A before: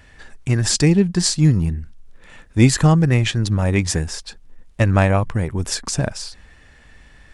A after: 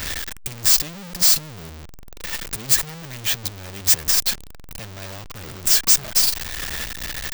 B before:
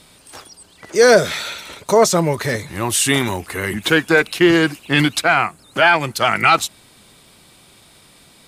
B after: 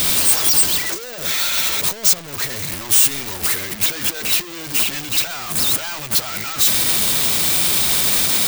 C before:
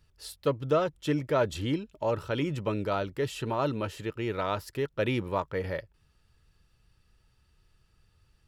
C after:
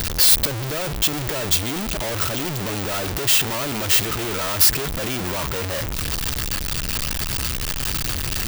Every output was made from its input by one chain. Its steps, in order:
sign of each sample alone
parametric band 12,000 Hz −10 dB 2 octaves
hard clipping −22 dBFS
first-order pre-emphasis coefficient 0.8
expander for the loud parts 2.5 to 1, over −42 dBFS
normalise the peak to −3 dBFS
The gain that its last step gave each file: +14.0, +14.0, +26.0 decibels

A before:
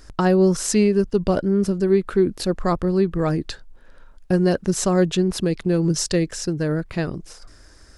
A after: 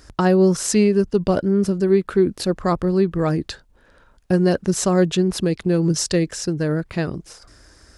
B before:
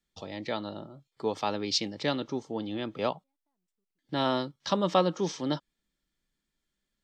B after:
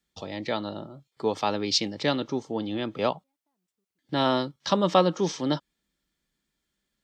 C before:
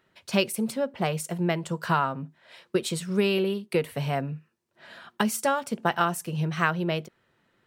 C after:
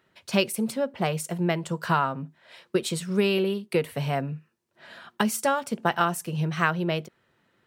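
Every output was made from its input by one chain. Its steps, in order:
high-pass filter 41 Hz
normalise the peak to −6 dBFS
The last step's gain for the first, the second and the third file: +1.0, +4.0, +0.5 decibels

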